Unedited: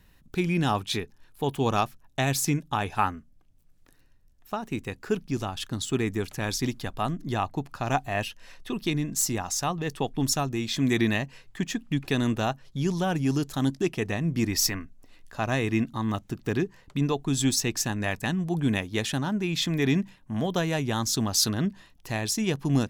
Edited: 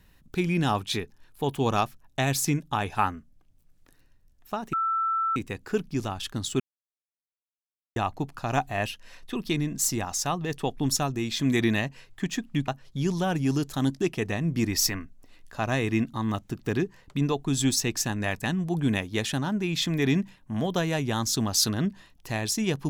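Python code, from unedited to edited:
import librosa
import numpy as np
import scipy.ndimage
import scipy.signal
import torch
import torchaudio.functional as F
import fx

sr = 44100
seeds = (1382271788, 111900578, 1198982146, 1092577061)

y = fx.edit(x, sr, fx.insert_tone(at_s=4.73, length_s=0.63, hz=1330.0, db=-23.0),
    fx.silence(start_s=5.97, length_s=1.36),
    fx.cut(start_s=12.05, length_s=0.43), tone=tone)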